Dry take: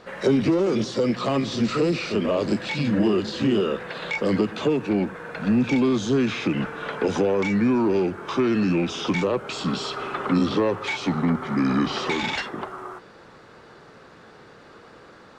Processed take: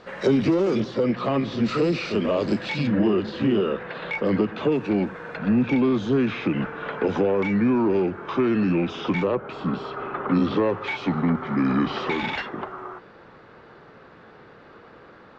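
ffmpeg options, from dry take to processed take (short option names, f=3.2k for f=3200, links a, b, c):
-af "asetnsamples=n=441:p=0,asendcmd='0.8 lowpass f 2800;1.66 lowpass f 5300;2.87 lowpass f 2800;4.72 lowpass f 5000;5.37 lowpass f 2800;9.35 lowpass f 1700;10.31 lowpass f 3000',lowpass=6.2k"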